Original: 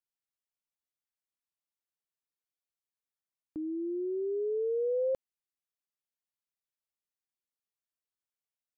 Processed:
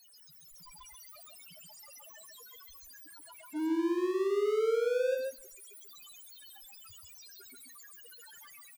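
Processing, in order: zero-crossing step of -45 dBFS; loudest bins only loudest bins 1; AGC gain up to 11 dB; limiter -21 dBFS, peak gain reduction 3 dB; power-law curve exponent 0.5; echo 0.135 s -3 dB; on a send at -16 dB: reverb RT60 0.80 s, pre-delay 3 ms; on the sum: gain -7.5 dB

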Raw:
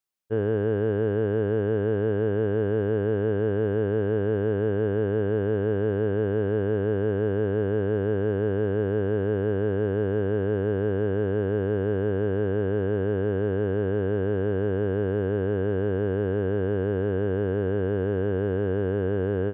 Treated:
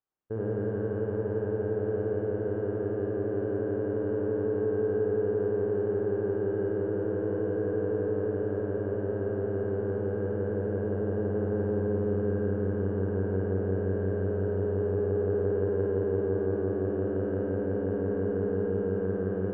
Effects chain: LPF 1300 Hz 12 dB/oct; limiter -23.5 dBFS, peak gain reduction 8.5 dB; flutter echo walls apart 9.1 m, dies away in 1.2 s

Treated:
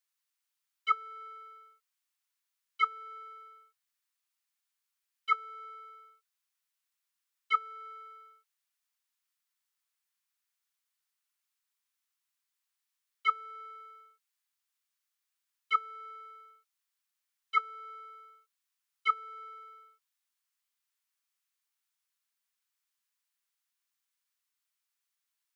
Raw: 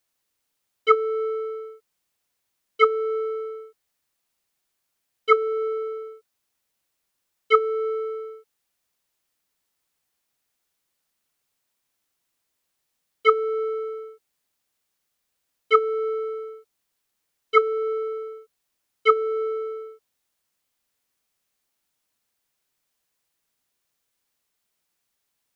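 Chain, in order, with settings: HPF 1000 Hz 24 dB/oct; gain -8 dB

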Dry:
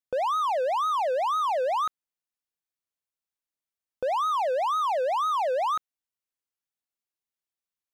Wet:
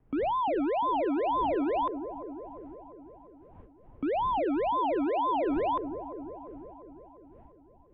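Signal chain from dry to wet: wind noise 160 Hz -41 dBFS; dark delay 0.348 s, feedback 60%, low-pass 740 Hz, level -7 dB; mistuned SSB -230 Hz 220–3300 Hz; gain -2.5 dB

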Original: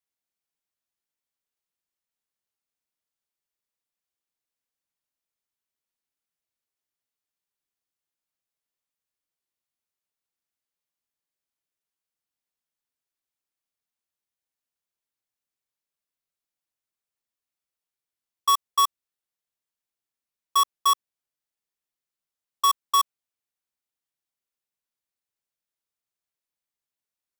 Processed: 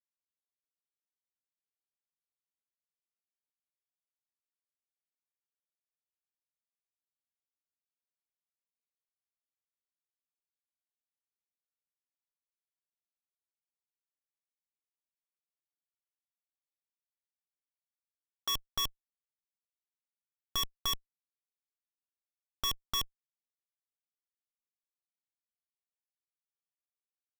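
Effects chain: band shelf 2500 Hz +14 dB 1.3 oct; Schmitt trigger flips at -31 dBFS

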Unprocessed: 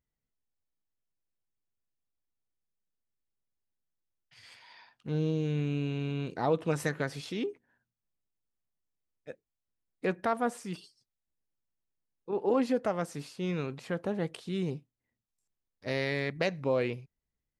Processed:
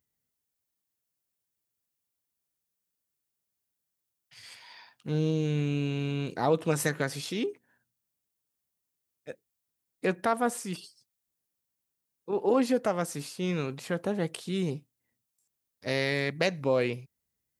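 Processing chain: HPF 74 Hz; high shelf 6500 Hz +12 dB; gain +2.5 dB

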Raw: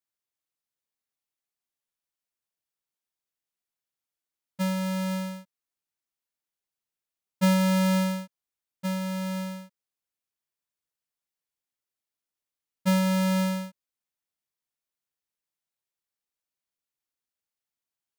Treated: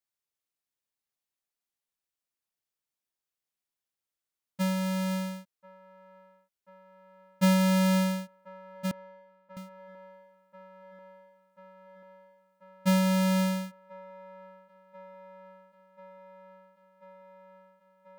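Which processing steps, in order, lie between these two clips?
8.91–9.57 sine-wave speech; band-limited delay 1.038 s, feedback 81%, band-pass 770 Hz, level -17.5 dB; gain -1 dB

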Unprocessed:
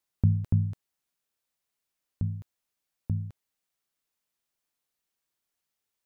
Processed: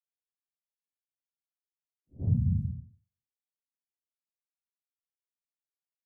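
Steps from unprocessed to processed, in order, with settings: gate -29 dBFS, range -56 dB; Paulstretch 4.6×, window 0.05 s, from 2.61; pre-echo 80 ms -17 dB; low-pass opened by the level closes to 430 Hz, open at -26.5 dBFS; gain +2.5 dB

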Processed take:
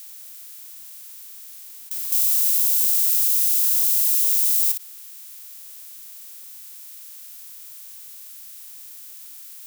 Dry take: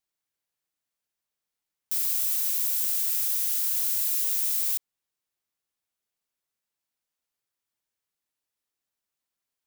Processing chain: per-bin compression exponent 0.2; 2.12–4.72 tilt shelf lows -9.5 dB, about 1400 Hz; gain -7.5 dB

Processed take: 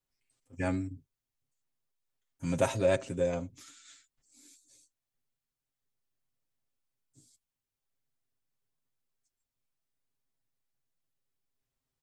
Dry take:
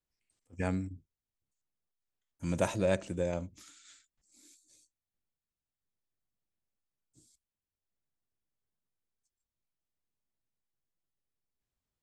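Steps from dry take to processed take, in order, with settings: comb 7.5 ms, depth 76%

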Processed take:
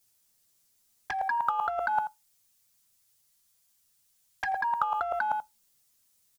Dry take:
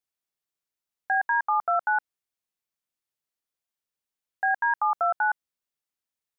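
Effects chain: 1.92–4.52 bell 350 Hz -11 dB 1 oct; envelope flanger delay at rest 9.6 ms, full sweep at -21.5 dBFS; tone controls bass +9 dB, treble +12 dB; sample leveller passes 1; echo 84 ms -22.5 dB; negative-ratio compressor -32 dBFS, ratio -0.5; reverb RT60 0.20 s, pre-delay 3 ms, DRR 15.5 dB; gain +6.5 dB

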